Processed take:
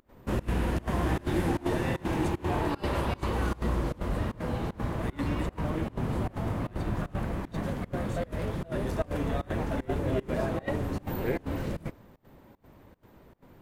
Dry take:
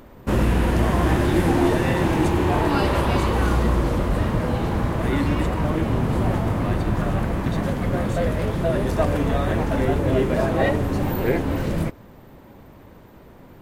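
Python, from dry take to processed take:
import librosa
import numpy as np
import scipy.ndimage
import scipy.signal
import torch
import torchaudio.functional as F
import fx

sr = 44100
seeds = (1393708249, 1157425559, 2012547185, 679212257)

y = fx.volume_shaper(x, sr, bpm=153, per_beat=1, depth_db=-24, release_ms=87.0, shape='slow start')
y = y * librosa.db_to_amplitude(-8.5)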